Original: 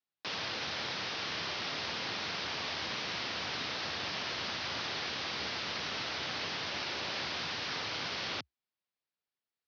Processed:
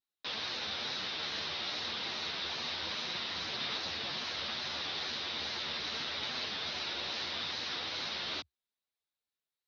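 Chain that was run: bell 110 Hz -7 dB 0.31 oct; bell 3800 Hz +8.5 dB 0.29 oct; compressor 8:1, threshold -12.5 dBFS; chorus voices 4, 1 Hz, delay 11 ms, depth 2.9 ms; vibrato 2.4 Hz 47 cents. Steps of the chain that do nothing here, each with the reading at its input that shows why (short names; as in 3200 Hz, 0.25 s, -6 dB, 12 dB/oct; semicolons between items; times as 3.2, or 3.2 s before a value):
compressor, threshold -12.5 dBFS: input peak -21.0 dBFS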